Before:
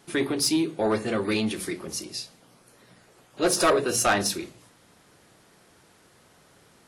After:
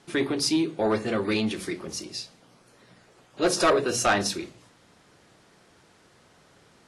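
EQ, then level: low-pass 7.7 kHz 12 dB/octave; 0.0 dB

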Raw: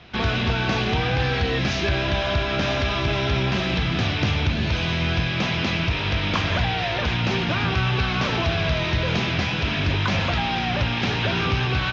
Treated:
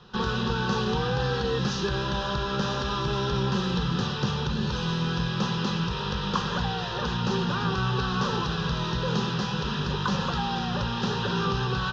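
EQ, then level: static phaser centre 440 Hz, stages 8; 0.0 dB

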